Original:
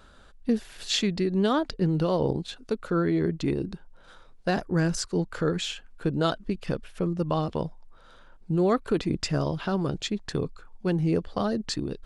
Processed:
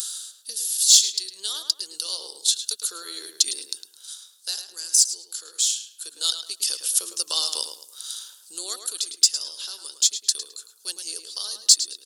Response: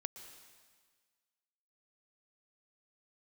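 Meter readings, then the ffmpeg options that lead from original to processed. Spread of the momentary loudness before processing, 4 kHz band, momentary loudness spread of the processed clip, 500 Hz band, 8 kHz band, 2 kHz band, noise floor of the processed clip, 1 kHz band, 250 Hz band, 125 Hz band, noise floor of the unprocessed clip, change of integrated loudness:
9 LU, +12.5 dB, 17 LU, -20.5 dB, +21.5 dB, -9.0 dB, -54 dBFS, -13.0 dB, under -25 dB, under -40 dB, -52 dBFS, +5.5 dB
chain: -filter_complex "[0:a]highpass=f=440:w=0.5412,highpass=f=440:w=1.3066,aresample=32000,aresample=44100,equalizer=f=670:t=o:w=1.1:g=-10.5,asplit=2[a][b];[b]acompressor=threshold=-40dB:ratio=6,volume=-2dB[c];[a][c]amix=inputs=2:normalize=0,aemphasis=mode=production:type=riaa,aexciter=amount=12:drive=6.8:freq=3.4k,dynaudnorm=f=330:g=5:m=11.5dB,asplit=2[d][e];[e]adelay=107,lowpass=f=3.2k:p=1,volume=-7dB,asplit=2[f][g];[g]adelay=107,lowpass=f=3.2k:p=1,volume=0.33,asplit=2[h][i];[i]adelay=107,lowpass=f=3.2k:p=1,volume=0.33,asplit=2[j][k];[k]adelay=107,lowpass=f=3.2k:p=1,volume=0.33[l];[f][h][j][l]amix=inputs=4:normalize=0[m];[d][m]amix=inputs=2:normalize=0,volume=-1dB"

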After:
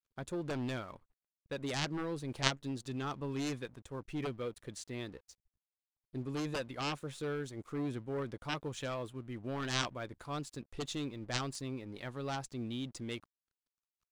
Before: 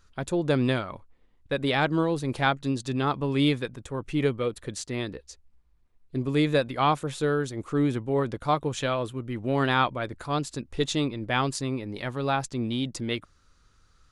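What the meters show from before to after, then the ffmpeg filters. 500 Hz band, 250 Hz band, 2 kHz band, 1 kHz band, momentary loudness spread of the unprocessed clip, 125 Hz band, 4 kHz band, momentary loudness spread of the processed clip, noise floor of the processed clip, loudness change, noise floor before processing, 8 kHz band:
-13.0 dB, -12.0 dB, -11.0 dB, -14.5 dB, 9 LU, -11.5 dB, -7.5 dB, 9 LU, under -85 dBFS, -12.0 dB, -63 dBFS, -6.0 dB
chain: -af "aeval=exprs='sgn(val(0))*max(abs(val(0))-0.00237,0)':c=same,aeval=exprs='0.422*(cos(1*acos(clip(val(0)/0.422,-1,1)))-cos(1*PI/2))+0.188*(cos(3*acos(clip(val(0)/0.422,-1,1)))-cos(3*PI/2))':c=same"

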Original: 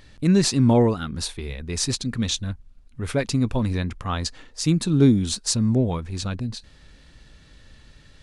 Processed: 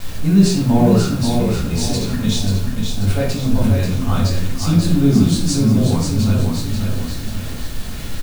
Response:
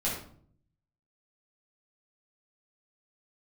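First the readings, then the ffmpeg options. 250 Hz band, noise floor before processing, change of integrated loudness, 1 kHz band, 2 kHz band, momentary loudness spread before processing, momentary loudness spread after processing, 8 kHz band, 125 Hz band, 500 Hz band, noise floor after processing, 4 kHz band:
+6.5 dB, -52 dBFS, +5.5 dB, +5.0 dB, +4.5 dB, 14 LU, 13 LU, +2.0 dB, +7.5 dB, +3.5 dB, -26 dBFS, +3.5 dB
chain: -filter_complex "[0:a]aeval=exprs='val(0)+0.5*0.0422*sgn(val(0))':c=same,aecho=1:1:537|1074|1611|2148|2685|3222:0.562|0.259|0.119|0.0547|0.0252|0.0116[a];[1:a]atrim=start_sample=2205,afade=t=out:st=0.38:d=0.01,atrim=end_sample=17199[b];[a][b]afir=irnorm=-1:irlink=0,acrusher=bits=4:mix=0:aa=0.000001,bandreject=f=2k:w=12,volume=-7dB"

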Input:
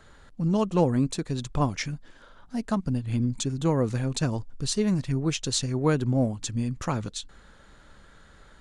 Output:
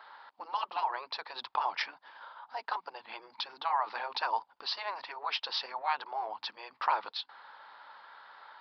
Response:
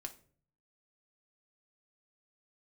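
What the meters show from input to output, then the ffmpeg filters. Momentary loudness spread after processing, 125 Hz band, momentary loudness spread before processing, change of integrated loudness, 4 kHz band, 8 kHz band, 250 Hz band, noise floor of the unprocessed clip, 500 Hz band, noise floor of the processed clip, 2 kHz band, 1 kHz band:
19 LU, under -40 dB, 9 LU, -8.0 dB, -1.5 dB, under -25 dB, under -35 dB, -54 dBFS, -15.5 dB, -71 dBFS, +1.0 dB, +4.0 dB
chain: -af "aresample=11025,aresample=44100,afftfilt=real='re*lt(hypot(re,im),0.141)':imag='im*lt(hypot(re,im),0.141)':win_size=1024:overlap=0.75,highpass=f=900:t=q:w=4.9"

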